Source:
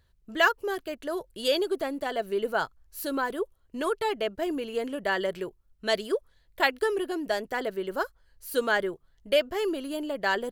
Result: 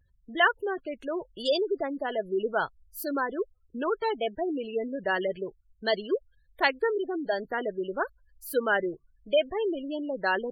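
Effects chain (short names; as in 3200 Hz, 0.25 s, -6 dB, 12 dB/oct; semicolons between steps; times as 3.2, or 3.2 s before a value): spectral gate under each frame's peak -20 dB strong; vibrato 0.76 Hz 69 cents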